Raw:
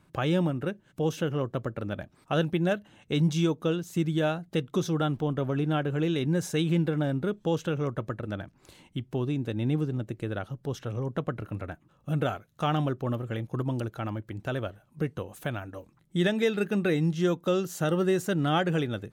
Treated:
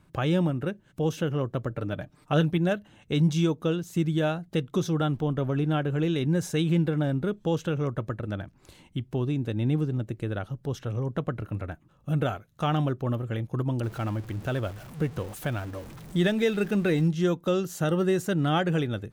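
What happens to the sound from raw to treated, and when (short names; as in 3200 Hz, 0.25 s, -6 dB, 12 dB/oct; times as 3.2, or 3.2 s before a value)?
1.7–2.58 comb 6.7 ms, depth 50%
13.83–17.08 zero-crossing step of -40.5 dBFS
whole clip: low shelf 100 Hz +7.5 dB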